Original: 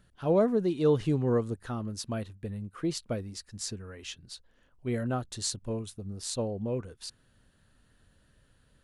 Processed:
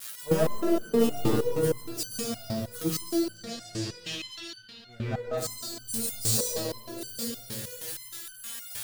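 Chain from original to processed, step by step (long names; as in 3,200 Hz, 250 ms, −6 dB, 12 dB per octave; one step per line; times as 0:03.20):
spike at every zero crossing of −20.5 dBFS
high-pass filter 78 Hz 24 dB per octave
noise gate −29 dBFS, range −10 dB
0:03.15–0:05.37: low-pass filter 4,700 Hz → 2,000 Hz 12 dB per octave
leveller curve on the samples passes 2
shaped tremolo saw down 0.52 Hz, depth 60%
convolution reverb RT60 2.8 s, pre-delay 116 ms, DRR −4 dB
step-sequenced resonator 6.4 Hz 110–1,500 Hz
level +6.5 dB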